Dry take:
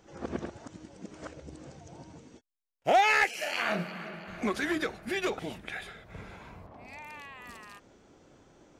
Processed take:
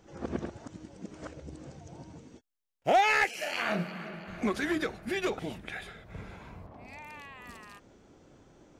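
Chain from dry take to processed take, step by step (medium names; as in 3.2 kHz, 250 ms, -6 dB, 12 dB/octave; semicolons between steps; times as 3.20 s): bass shelf 340 Hz +4.5 dB; trim -1.5 dB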